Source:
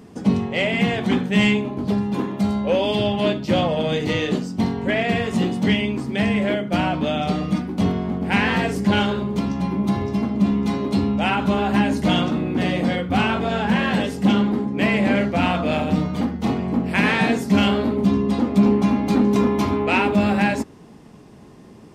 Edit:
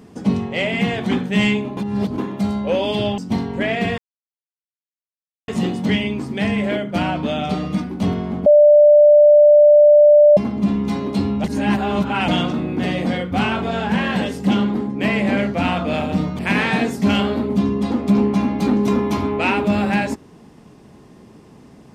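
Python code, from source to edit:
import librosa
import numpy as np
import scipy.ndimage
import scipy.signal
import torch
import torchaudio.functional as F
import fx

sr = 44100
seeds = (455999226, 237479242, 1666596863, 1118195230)

y = fx.edit(x, sr, fx.reverse_span(start_s=1.77, length_s=0.41),
    fx.cut(start_s=3.18, length_s=1.28),
    fx.insert_silence(at_s=5.26, length_s=1.5),
    fx.bleep(start_s=8.24, length_s=1.91, hz=592.0, db=-6.0),
    fx.reverse_span(start_s=11.22, length_s=0.84),
    fx.cut(start_s=16.17, length_s=0.7), tone=tone)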